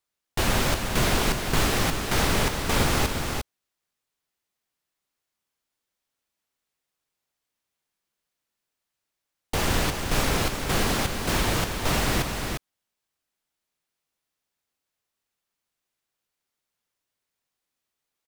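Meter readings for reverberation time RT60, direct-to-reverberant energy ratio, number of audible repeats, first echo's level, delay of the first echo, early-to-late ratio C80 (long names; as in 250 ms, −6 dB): no reverb audible, no reverb audible, 1, −6.0 dB, 352 ms, no reverb audible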